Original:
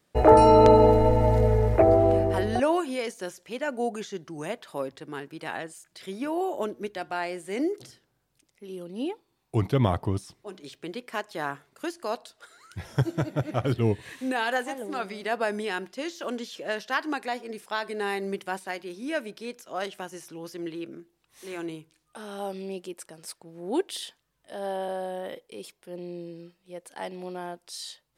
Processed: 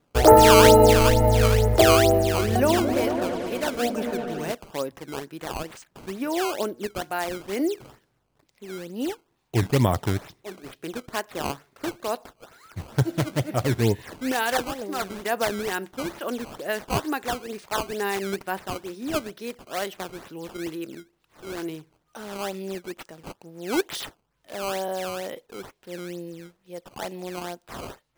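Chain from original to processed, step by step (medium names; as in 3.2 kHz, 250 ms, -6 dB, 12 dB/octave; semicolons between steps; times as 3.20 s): decimation with a swept rate 14×, swing 160% 2.2 Hz; 2.37–4.52 s: delay with an opening low-pass 111 ms, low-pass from 200 Hz, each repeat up 1 oct, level 0 dB; trim +2.5 dB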